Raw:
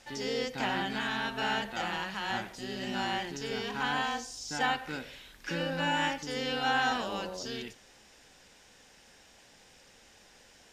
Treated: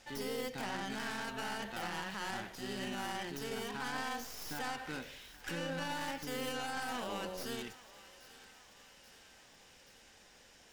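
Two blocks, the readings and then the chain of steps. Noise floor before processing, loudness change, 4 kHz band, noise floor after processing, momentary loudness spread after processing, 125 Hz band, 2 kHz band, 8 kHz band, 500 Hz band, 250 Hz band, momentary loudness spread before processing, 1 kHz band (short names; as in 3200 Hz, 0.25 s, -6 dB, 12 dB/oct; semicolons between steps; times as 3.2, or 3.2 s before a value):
-59 dBFS, -7.5 dB, -8.0 dB, -61 dBFS, 20 LU, -6.0 dB, -8.0 dB, -2.5 dB, -5.5 dB, -5.5 dB, 9 LU, -8.5 dB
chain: tracing distortion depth 0.21 ms; limiter -27 dBFS, peak gain reduction 11.5 dB; on a send: thinning echo 0.829 s, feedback 66%, high-pass 880 Hz, level -16 dB; on the sum: gain -3 dB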